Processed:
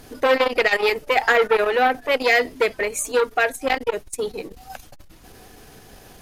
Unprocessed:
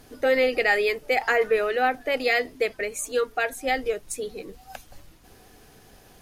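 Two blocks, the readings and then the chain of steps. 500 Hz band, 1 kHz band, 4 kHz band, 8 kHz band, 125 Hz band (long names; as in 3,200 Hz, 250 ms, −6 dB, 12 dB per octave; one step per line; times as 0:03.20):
+3.5 dB, +5.5 dB, +5.5 dB, +4.5 dB, can't be measured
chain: saturating transformer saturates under 1,200 Hz
level +7 dB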